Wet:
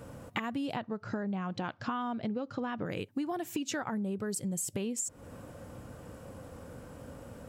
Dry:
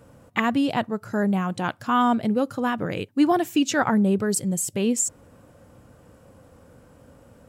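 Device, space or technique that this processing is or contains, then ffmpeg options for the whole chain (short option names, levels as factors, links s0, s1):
serial compression, leveller first: -filter_complex "[0:a]acompressor=threshold=0.0631:ratio=3,acompressor=threshold=0.0141:ratio=5,asettb=1/sr,asplit=3[s0][s1][s2];[s0]atrim=end=0.764[s3];[s1]atrim=start=0.76:end=2.85,asetpts=PTS-STARTPTS,afade=t=in:d=0.004:c=qsin,afade=t=out:st=2.086:d=0.004:c=qsin,lowpass=f=5500:w=0.5412,lowpass=f=5500:w=1.3066[s4];[s2]atrim=start=2.846[s5];[s3][s4]acrossfade=d=0.004:c1=hsin:c2=qsin[s6];[s6][s5]acrossfade=d=0.004:c1=qsin:c2=hsin,volume=1.58"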